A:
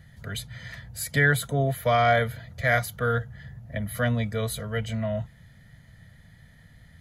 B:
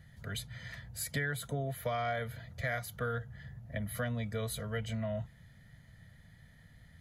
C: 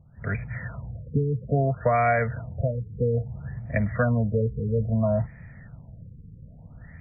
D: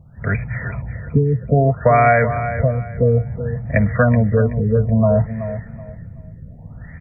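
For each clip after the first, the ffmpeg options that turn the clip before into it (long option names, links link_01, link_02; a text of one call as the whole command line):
ffmpeg -i in.wav -af "acompressor=threshold=-26dB:ratio=6,volume=-5.5dB" out.wav
ffmpeg -i in.wav -af "dynaudnorm=framelen=140:gausssize=3:maxgain=11dB,afftfilt=real='re*lt(b*sr/1024,480*pow(2600/480,0.5+0.5*sin(2*PI*0.6*pts/sr)))':imag='im*lt(b*sr/1024,480*pow(2600/480,0.5+0.5*sin(2*PI*0.6*pts/sr)))':win_size=1024:overlap=0.75,volume=2dB" out.wav
ffmpeg -i in.wav -af "aecho=1:1:377|754|1131:0.282|0.0733|0.0191,volume=8.5dB" out.wav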